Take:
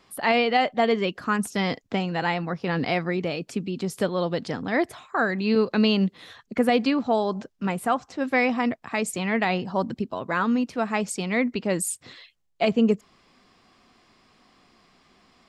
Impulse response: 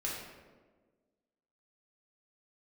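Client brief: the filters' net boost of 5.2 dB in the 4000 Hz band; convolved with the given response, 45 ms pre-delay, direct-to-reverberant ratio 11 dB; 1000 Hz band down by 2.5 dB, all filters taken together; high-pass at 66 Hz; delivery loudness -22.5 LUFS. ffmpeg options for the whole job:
-filter_complex "[0:a]highpass=66,equalizer=f=1k:t=o:g=-4,equalizer=f=4k:t=o:g=7.5,asplit=2[a][b];[1:a]atrim=start_sample=2205,adelay=45[c];[b][c]afir=irnorm=-1:irlink=0,volume=-14dB[d];[a][d]amix=inputs=2:normalize=0,volume=2dB"

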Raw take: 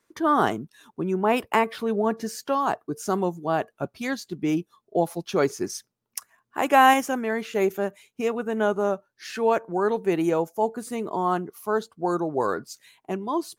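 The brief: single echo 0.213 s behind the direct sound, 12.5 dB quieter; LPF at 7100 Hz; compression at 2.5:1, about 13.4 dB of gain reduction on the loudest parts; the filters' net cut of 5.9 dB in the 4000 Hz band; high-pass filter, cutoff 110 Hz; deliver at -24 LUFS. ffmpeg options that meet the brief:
-af "highpass=110,lowpass=7.1k,equalizer=f=4k:t=o:g=-9,acompressor=threshold=-32dB:ratio=2.5,aecho=1:1:213:0.237,volume=10dB"

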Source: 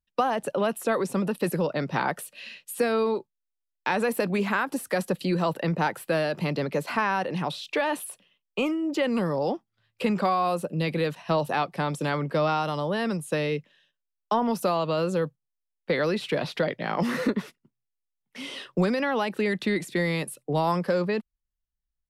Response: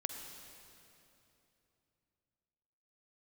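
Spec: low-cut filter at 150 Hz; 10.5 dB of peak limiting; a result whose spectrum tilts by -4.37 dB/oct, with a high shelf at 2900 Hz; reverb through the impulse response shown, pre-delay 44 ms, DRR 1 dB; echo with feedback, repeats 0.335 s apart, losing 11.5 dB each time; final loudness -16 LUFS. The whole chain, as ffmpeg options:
-filter_complex "[0:a]highpass=150,highshelf=f=2.9k:g=9,alimiter=limit=-21dB:level=0:latency=1,aecho=1:1:335|670|1005:0.266|0.0718|0.0194,asplit=2[a][b];[1:a]atrim=start_sample=2205,adelay=44[c];[b][c]afir=irnorm=-1:irlink=0,volume=-1dB[d];[a][d]amix=inputs=2:normalize=0,volume=11.5dB"

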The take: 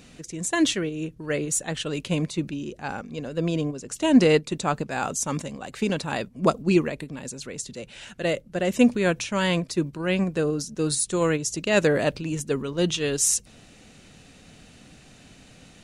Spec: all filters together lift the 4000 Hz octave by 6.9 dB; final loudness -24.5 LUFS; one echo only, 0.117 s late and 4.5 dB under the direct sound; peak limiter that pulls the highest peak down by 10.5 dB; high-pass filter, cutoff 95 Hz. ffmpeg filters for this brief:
-af "highpass=95,equalizer=f=4k:t=o:g=9,alimiter=limit=-15dB:level=0:latency=1,aecho=1:1:117:0.596,volume=1dB"

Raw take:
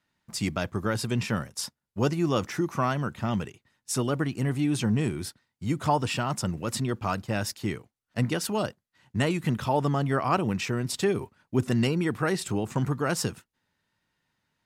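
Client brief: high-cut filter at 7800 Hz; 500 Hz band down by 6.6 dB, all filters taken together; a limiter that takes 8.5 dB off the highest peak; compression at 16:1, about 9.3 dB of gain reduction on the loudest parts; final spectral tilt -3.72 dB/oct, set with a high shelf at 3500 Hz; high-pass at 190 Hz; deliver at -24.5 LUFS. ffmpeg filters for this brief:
-af "highpass=190,lowpass=7.8k,equalizer=f=500:t=o:g=-9,highshelf=f=3.5k:g=8,acompressor=threshold=-31dB:ratio=16,volume=13.5dB,alimiter=limit=-12dB:level=0:latency=1"

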